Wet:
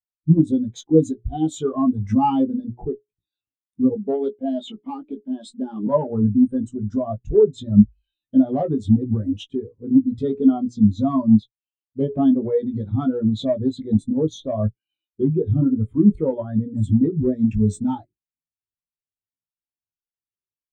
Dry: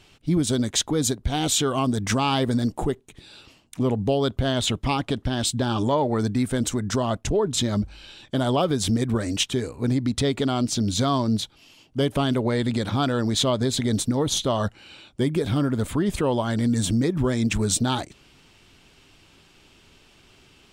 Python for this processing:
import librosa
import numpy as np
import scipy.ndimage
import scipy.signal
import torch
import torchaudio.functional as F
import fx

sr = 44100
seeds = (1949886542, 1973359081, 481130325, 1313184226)

y = fx.hum_notches(x, sr, base_hz=60, count=7)
y = fx.highpass(y, sr, hz=190.0, slope=24, at=(3.95, 5.87))
y = fx.cheby_harmonics(y, sr, harmonics=(5, 6, 8), levels_db=(-16, -7, -8), full_scale_db=-8.5)
y = fx.doubler(y, sr, ms=19.0, db=-6.0)
y = fx.spectral_expand(y, sr, expansion=2.5)
y = y * 10.0 ** (2.5 / 20.0)